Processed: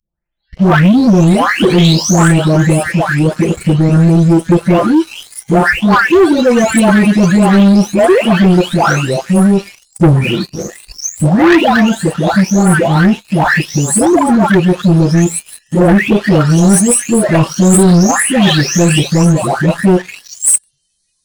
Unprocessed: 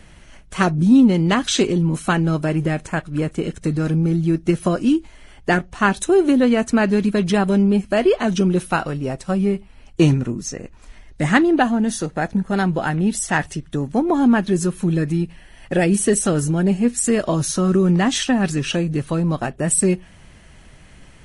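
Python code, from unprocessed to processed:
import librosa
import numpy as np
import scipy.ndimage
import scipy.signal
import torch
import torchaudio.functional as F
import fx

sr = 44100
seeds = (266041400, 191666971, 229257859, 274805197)

y = fx.spec_delay(x, sr, highs='late', ms=752)
y = fx.noise_reduce_blind(y, sr, reduce_db=29)
y = fx.leveller(y, sr, passes=3)
y = F.gain(torch.from_numpy(y), 2.5).numpy()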